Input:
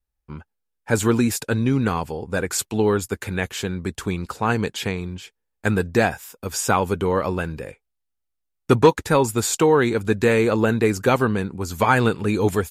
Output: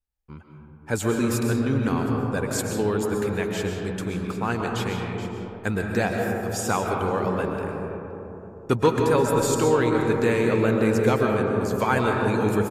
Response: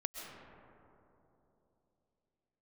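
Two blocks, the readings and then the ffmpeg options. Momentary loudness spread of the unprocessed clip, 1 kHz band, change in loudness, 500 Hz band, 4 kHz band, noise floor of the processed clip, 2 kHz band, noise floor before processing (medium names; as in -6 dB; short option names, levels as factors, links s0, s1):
12 LU, -3.0 dB, -2.5 dB, -2.0 dB, -4.5 dB, -46 dBFS, -3.5 dB, -78 dBFS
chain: -filter_complex "[0:a]asplit=2[s0][s1];[s1]adelay=520,lowpass=f=930:p=1,volume=0.224,asplit=2[s2][s3];[s3]adelay=520,lowpass=f=930:p=1,volume=0.54,asplit=2[s4][s5];[s5]adelay=520,lowpass=f=930:p=1,volume=0.54,asplit=2[s6][s7];[s7]adelay=520,lowpass=f=930:p=1,volume=0.54,asplit=2[s8][s9];[s9]adelay=520,lowpass=f=930:p=1,volume=0.54,asplit=2[s10][s11];[s11]adelay=520,lowpass=f=930:p=1,volume=0.54[s12];[s0][s2][s4][s6][s8][s10][s12]amix=inputs=7:normalize=0[s13];[1:a]atrim=start_sample=2205[s14];[s13][s14]afir=irnorm=-1:irlink=0,volume=0.668"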